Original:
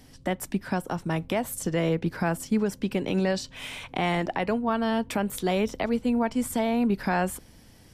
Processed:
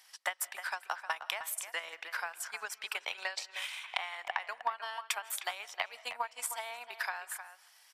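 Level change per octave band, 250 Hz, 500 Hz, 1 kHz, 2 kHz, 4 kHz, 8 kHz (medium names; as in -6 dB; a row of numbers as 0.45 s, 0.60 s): under -40 dB, -20.0 dB, -7.5 dB, -2.5 dB, -1.5 dB, -2.0 dB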